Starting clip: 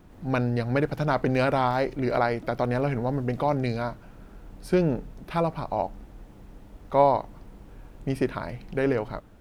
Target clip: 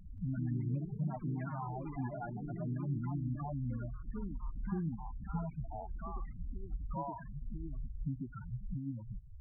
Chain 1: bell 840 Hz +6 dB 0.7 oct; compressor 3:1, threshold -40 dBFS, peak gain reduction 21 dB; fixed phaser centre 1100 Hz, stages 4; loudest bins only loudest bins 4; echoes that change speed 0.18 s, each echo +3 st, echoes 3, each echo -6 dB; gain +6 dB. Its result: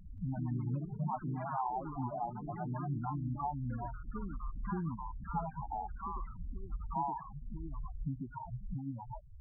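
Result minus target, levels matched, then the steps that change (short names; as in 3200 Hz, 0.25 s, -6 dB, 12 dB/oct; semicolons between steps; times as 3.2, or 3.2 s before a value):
1000 Hz band +7.5 dB
change: bell 840 Hz -5 dB 0.7 oct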